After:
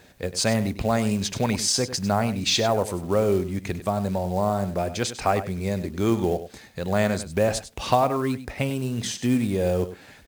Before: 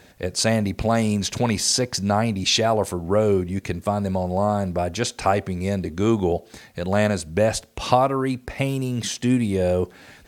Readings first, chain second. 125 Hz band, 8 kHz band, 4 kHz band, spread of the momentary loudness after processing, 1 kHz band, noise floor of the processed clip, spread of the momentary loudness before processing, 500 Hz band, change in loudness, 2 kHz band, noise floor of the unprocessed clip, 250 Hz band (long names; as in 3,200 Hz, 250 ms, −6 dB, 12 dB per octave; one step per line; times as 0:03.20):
−2.5 dB, −2.0 dB, −2.0 dB, 7 LU, −2.5 dB, −49 dBFS, 7 LU, −2.5 dB, −2.5 dB, −2.0 dB, −51 dBFS, −2.5 dB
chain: single-tap delay 99 ms −13 dB
log-companded quantiser 6 bits
level −2.5 dB